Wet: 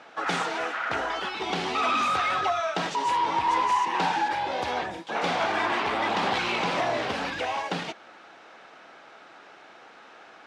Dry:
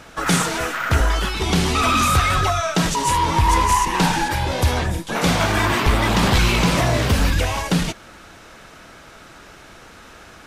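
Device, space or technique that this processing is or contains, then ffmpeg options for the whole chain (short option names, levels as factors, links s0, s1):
intercom: -af "highpass=340,lowpass=3800,equalizer=f=780:t=o:w=0.3:g=6.5,asoftclip=type=tanh:threshold=0.355,volume=0.531"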